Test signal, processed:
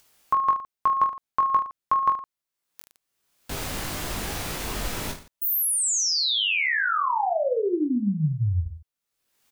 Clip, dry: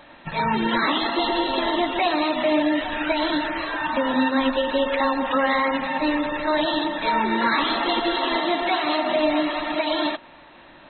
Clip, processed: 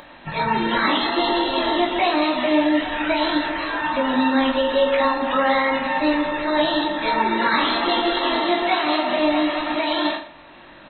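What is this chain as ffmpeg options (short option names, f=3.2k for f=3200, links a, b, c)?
-af "aecho=1:1:20|45|76.25|115.3|164.1:0.631|0.398|0.251|0.158|0.1,acompressor=mode=upward:threshold=-40dB:ratio=2.5"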